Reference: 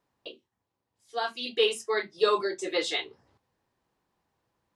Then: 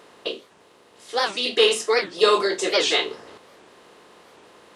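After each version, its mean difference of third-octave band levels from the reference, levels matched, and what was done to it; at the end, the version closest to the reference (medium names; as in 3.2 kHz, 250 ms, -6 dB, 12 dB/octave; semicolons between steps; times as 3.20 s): 6.5 dB: spectral levelling over time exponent 0.6; dynamic bell 6.6 kHz, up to +5 dB, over -44 dBFS, Q 0.81; warped record 78 rpm, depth 250 cents; trim +4.5 dB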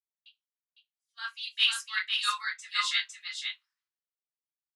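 11.5 dB: steep high-pass 1.3 kHz 36 dB/octave; delay 506 ms -3 dB; three bands expanded up and down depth 100%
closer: first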